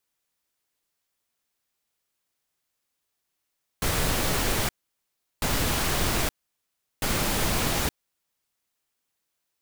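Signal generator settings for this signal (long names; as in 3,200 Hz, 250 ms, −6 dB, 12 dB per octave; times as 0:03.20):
noise bursts pink, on 0.87 s, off 0.73 s, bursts 3, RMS −25 dBFS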